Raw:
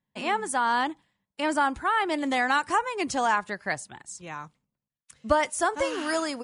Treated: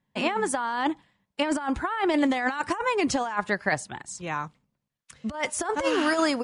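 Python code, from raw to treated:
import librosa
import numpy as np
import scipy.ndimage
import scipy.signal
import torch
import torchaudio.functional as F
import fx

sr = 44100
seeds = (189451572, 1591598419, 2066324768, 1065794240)

y = fx.high_shelf(x, sr, hz=7600.0, db=-11.0)
y = fx.over_compress(y, sr, threshold_db=-28.0, ratio=-0.5)
y = F.gain(torch.from_numpy(y), 4.0).numpy()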